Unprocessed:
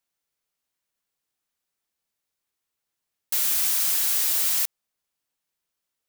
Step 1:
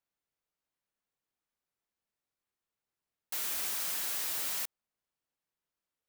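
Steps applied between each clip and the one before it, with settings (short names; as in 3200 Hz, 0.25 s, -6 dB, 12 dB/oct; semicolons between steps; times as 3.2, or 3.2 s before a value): high shelf 2700 Hz -9.5 dB; gain -3 dB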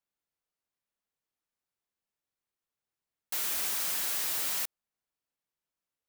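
sample leveller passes 1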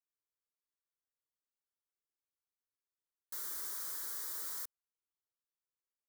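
fixed phaser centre 710 Hz, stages 6; gain -9 dB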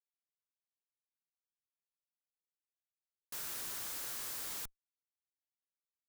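Schmitt trigger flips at -55.5 dBFS; gain +6 dB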